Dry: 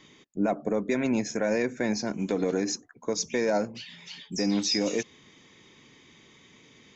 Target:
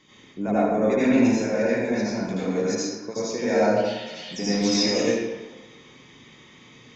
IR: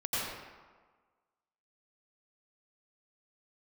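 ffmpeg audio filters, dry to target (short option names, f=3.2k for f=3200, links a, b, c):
-filter_complex "[0:a]asettb=1/sr,asplit=3[a][b][c];[a]atrim=end=1.274[d];[b]atrim=start=1.27:end=3.45,asetpts=PTS-STARTPTS,afade=t=in:d=0.004:c=qsin,afade=t=out:st=2.176:d=0.004:c=qsin,acrossover=split=1100[e][f];[e]aeval=exprs='val(0)*(1-0.7/2+0.7/2*cos(2*PI*7.2*n/s))':c=same[g];[f]aeval=exprs='val(0)*(1-0.7/2-0.7/2*cos(2*PI*7.2*n/s))':c=same[h];[g][h]amix=inputs=2:normalize=0[i];[c]atrim=start=3.446[j];[d][i]acrossfade=d=0.004:c1=hsin:c2=qsin[k];[k][j]acrossfade=d=0.004:c1=qsin:c2=hsin[l];[1:a]atrim=start_sample=2205,asetrate=48510,aresample=44100[m];[l][m]afir=irnorm=-1:irlink=0"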